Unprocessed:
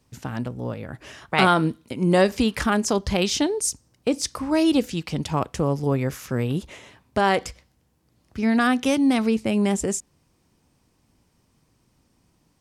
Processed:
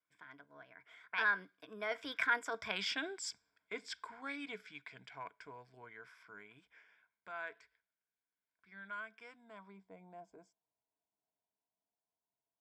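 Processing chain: Doppler pass-by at 2.78, 51 m/s, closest 8.9 m; ripple EQ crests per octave 1.7, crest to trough 11 dB; reverse; compressor 16:1, threshold -30 dBFS, peak gain reduction 14 dB; reverse; band-pass sweep 1700 Hz -> 770 Hz, 9.12–9.99; wow and flutter 23 cents; gain +10 dB

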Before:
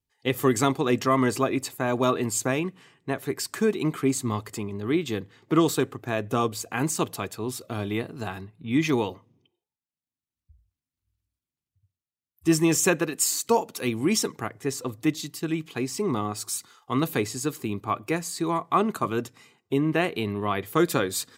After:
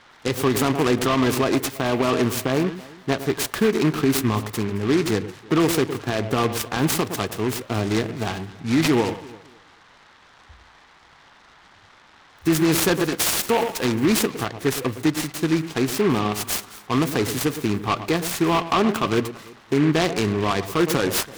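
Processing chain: spectral gain 2.29–2.67, 1700–8800 Hz -8 dB; on a send: echo with dull and thin repeats by turns 0.11 s, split 1000 Hz, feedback 52%, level -13 dB; on the sum: band noise 750–2200 Hz -59 dBFS; maximiser +16 dB; noise-modulated delay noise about 1600 Hz, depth 0.072 ms; gain -9 dB

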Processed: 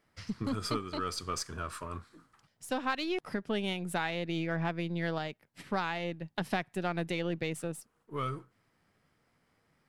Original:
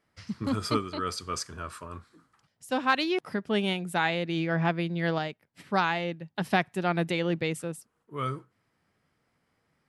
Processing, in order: half-wave gain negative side -3 dB; compressor 2.5:1, threshold -35 dBFS, peak gain reduction 11 dB; gain +2.5 dB

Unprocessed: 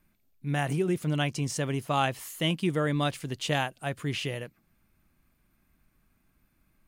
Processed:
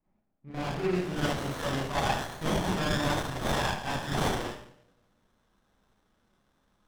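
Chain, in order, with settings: pre-emphasis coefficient 0.9; 1.8–4.32 comb 1.2 ms, depth 68%; dynamic EQ 1600 Hz, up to +6 dB, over -54 dBFS, Q 0.97; limiter -32 dBFS, peak gain reduction 11 dB; low-pass sweep 760 Hz -> 3800 Hz, 0.32–1.2; vibrato 0.38 Hz 9.7 cents; dark delay 0.193 s, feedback 48%, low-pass 860 Hz, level -22.5 dB; Schroeder reverb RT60 0.63 s, combs from 30 ms, DRR -9.5 dB; running maximum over 17 samples; gain +6.5 dB

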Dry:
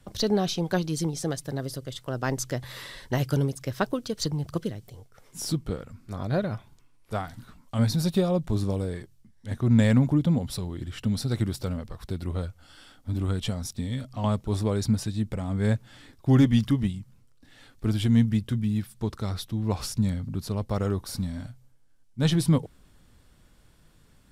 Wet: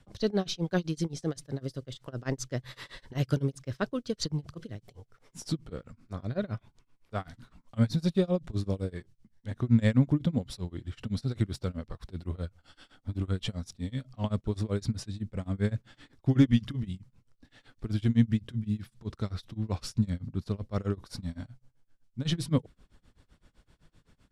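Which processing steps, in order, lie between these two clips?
dynamic EQ 840 Hz, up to -6 dB, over -48 dBFS, Q 2.5; tremolo 7.8 Hz, depth 96%; air absorption 53 m

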